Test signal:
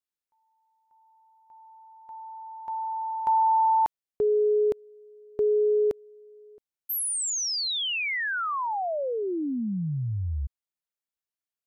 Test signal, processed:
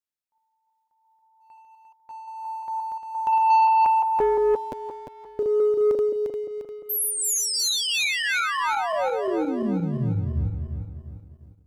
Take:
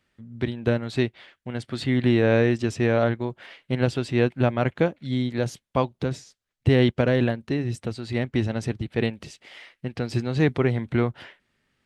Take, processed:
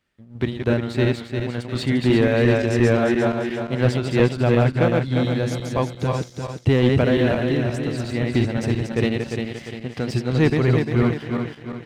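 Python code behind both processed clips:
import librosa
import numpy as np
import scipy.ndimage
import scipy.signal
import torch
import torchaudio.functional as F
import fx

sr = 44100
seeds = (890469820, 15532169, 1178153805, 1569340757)

y = fx.reverse_delay_fb(x, sr, ms=175, feedback_pct=65, wet_db=-3.0)
y = fx.tremolo_shape(y, sr, shape='triangle', hz=2.9, depth_pct=40)
y = fx.leveller(y, sr, passes=1)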